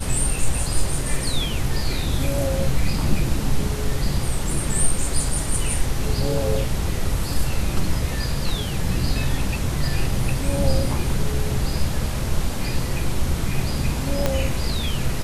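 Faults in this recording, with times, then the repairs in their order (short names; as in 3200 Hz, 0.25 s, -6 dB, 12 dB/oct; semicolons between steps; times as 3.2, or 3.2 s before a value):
14.26 pop -6 dBFS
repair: de-click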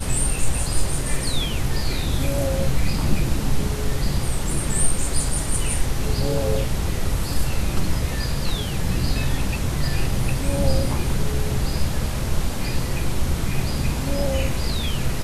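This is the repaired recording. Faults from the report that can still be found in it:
14.26 pop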